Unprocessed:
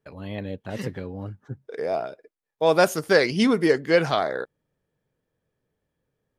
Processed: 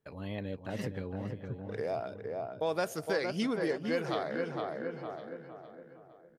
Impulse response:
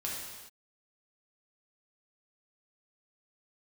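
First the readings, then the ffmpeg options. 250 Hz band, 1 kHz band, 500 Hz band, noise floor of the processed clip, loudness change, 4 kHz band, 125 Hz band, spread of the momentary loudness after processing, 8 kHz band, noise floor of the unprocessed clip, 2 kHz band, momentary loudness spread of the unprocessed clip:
−10.0 dB, −10.5 dB, −11.0 dB, −56 dBFS, −12.5 dB, −12.0 dB, −7.0 dB, 14 LU, −12.0 dB, −82 dBFS, −12.5 dB, 18 LU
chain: -filter_complex "[0:a]asplit=2[link_01][link_02];[link_02]adelay=461,lowpass=frequency=1700:poles=1,volume=-6dB,asplit=2[link_03][link_04];[link_04]adelay=461,lowpass=frequency=1700:poles=1,volume=0.42,asplit=2[link_05][link_06];[link_06]adelay=461,lowpass=frequency=1700:poles=1,volume=0.42,asplit=2[link_07][link_08];[link_08]adelay=461,lowpass=frequency=1700:poles=1,volume=0.42,asplit=2[link_09][link_10];[link_10]adelay=461,lowpass=frequency=1700:poles=1,volume=0.42[link_11];[link_03][link_05][link_07][link_09][link_11]amix=inputs=5:normalize=0[link_12];[link_01][link_12]amix=inputs=2:normalize=0,acompressor=threshold=-29dB:ratio=2.5,asplit=2[link_13][link_14];[link_14]aecho=0:1:1058:0.119[link_15];[link_13][link_15]amix=inputs=2:normalize=0,volume=-4dB"

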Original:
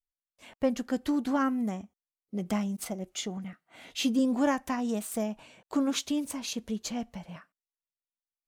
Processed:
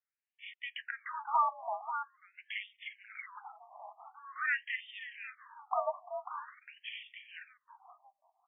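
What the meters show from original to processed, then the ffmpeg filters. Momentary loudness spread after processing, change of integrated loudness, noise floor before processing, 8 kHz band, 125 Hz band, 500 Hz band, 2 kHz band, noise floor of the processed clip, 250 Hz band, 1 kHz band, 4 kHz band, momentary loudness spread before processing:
19 LU, −7.0 dB, below −85 dBFS, below −40 dB, below −40 dB, −9.0 dB, +4.0 dB, below −85 dBFS, below −40 dB, +2.0 dB, −9.5 dB, 14 LU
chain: -filter_complex "[0:a]asplit=2[link_01][link_02];[link_02]adelay=542,lowpass=frequency=840:poles=1,volume=-6.5dB,asplit=2[link_03][link_04];[link_04]adelay=542,lowpass=frequency=840:poles=1,volume=0.18,asplit=2[link_05][link_06];[link_06]adelay=542,lowpass=frequency=840:poles=1,volume=0.18[link_07];[link_01][link_03][link_05][link_07]amix=inputs=4:normalize=0,highpass=frequency=520:width_type=q:width=0.5412,highpass=frequency=520:width_type=q:width=1.307,lowpass=frequency=3200:width_type=q:width=0.5176,lowpass=frequency=3200:width_type=q:width=0.7071,lowpass=frequency=3200:width_type=q:width=1.932,afreqshift=82,afftfilt=real='re*between(b*sr/1024,830*pow(2600/830,0.5+0.5*sin(2*PI*0.46*pts/sr))/1.41,830*pow(2600/830,0.5+0.5*sin(2*PI*0.46*pts/sr))*1.41)':imag='im*between(b*sr/1024,830*pow(2600/830,0.5+0.5*sin(2*PI*0.46*pts/sr))/1.41,830*pow(2600/830,0.5+0.5*sin(2*PI*0.46*pts/sr))*1.41)':win_size=1024:overlap=0.75,volume=6.5dB"

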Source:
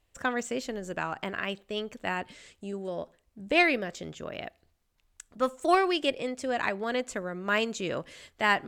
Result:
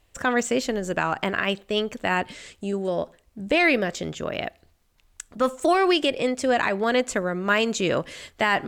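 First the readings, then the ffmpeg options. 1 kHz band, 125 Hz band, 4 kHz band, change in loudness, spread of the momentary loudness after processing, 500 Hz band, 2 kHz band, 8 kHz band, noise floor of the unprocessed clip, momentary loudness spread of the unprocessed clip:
+4.5 dB, +8.5 dB, +6.5 dB, +6.0 dB, 12 LU, +7.0 dB, +5.0 dB, +8.5 dB, −72 dBFS, 16 LU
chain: -af "alimiter=limit=-19.5dB:level=0:latency=1:release=47,volume=9dB"

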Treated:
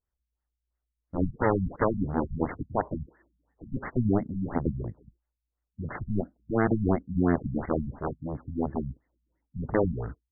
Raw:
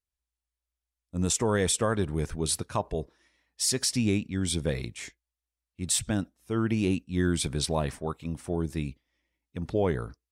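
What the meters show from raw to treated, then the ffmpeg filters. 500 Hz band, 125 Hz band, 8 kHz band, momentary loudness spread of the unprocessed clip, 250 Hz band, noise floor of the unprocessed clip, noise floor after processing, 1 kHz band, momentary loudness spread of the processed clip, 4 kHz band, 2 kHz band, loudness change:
+0.5 dB, 0.0 dB, below −40 dB, 13 LU, +1.0 dB, below −85 dBFS, below −85 dBFS, +3.0 dB, 12 LU, below −40 dB, −1.5 dB, −1.0 dB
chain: -af "aeval=exprs='0.178*(cos(1*acos(clip(val(0)/0.178,-1,1)))-cos(1*PI/2))+0.0708*(cos(7*acos(clip(val(0)/0.178,-1,1)))-cos(7*PI/2))':channel_layout=same,afftfilt=real='re*lt(b*sr/1024,220*pow(2200/220,0.5+0.5*sin(2*PI*2.9*pts/sr)))':imag='im*lt(b*sr/1024,220*pow(2200/220,0.5+0.5*sin(2*PI*2.9*pts/sr)))':win_size=1024:overlap=0.75,volume=1.5dB"

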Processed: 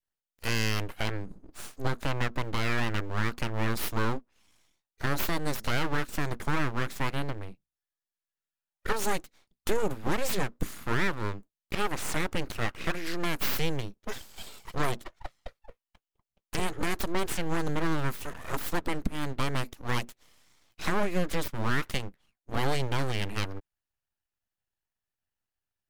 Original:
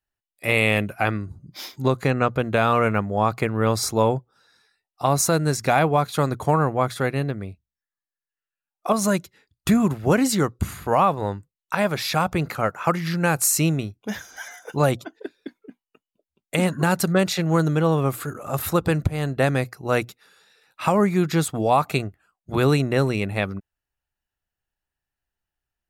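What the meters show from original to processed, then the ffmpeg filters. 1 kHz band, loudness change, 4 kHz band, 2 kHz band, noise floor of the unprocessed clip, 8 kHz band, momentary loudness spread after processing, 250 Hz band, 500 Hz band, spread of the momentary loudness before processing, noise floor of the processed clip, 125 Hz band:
−11.0 dB, −10.0 dB, −4.5 dB, −6.0 dB, below −85 dBFS, −12.0 dB, 11 LU, −11.5 dB, −12.0 dB, 12 LU, below −85 dBFS, −10.0 dB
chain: -af "alimiter=limit=-11dB:level=0:latency=1:release=122,aeval=exprs='abs(val(0))':channel_layout=same,adynamicequalizer=threshold=0.00891:dfrequency=720:dqfactor=1.4:tfrequency=720:tqfactor=1.4:attack=5:release=100:ratio=0.375:range=2.5:mode=cutabove:tftype=bell,volume=-3.5dB"

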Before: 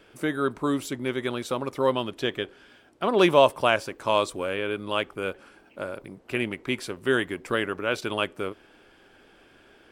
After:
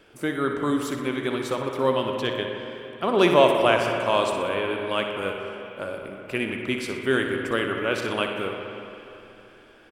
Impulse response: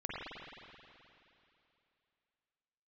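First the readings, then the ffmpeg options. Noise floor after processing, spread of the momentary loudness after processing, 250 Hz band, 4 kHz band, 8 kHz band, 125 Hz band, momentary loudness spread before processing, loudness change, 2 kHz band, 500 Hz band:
−51 dBFS, 15 LU, +2.0 dB, +1.5 dB, +0.5 dB, +2.0 dB, 15 LU, +2.0 dB, +2.0 dB, +2.0 dB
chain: -filter_complex "[0:a]aecho=1:1:61|122|183|244|305:0.335|0.157|0.074|0.0348|0.0163,asplit=2[link_01][link_02];[1:a]atrim=start_sample=2205,lowpass=4500,adelay=95[link_03];[link_02][link_03]afir=irnorm=-1:irlink=0,volume=-7.5dB[link_04];[link_01][link_04]amix=inputs=2:normalize=0"

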